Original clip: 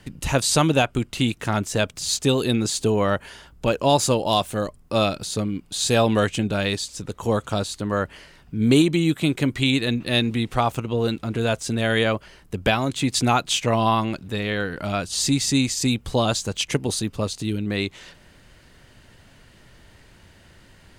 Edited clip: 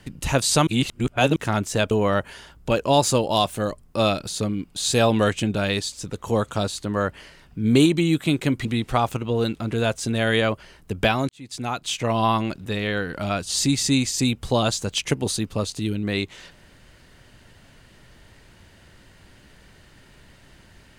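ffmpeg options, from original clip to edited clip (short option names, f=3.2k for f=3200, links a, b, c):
-filter_complex "[0:a]asplit=6[a][b][c][d][e][f];[a]atrim=end=0.672[g];[b]atrim=start=0.668:end=1.362,asetpts=PTS-STARTPTS,areverse[h];[c]atrim=start=1.358:end=1.912[i];[d]atrim=start=2.868:end=9.612[j];[e]atrim=start=10.278:end=12.92,asetpts=PTS-STARTPTS,afade=t=out:st=2.638:d=0.004:c=hsin[k];[f]atrim=start=12.92,asetpts=PTS-STARTPTS,afade=t=in:d=1.05[l];[g][h]acrossfade=d=0.004:c1=hsin:c2=hsin[m];[m][i]acrossfade=d=0.004:c1=hsin:c2=hsin[n];[n][j]acrossfade=d=0.004:c1=hsin:c2=hsin[o];[k][l]concat=n=2:v=0:a=1[p];[o][p]acrossfade=d=0.004:c1=hsin:c2=hsin"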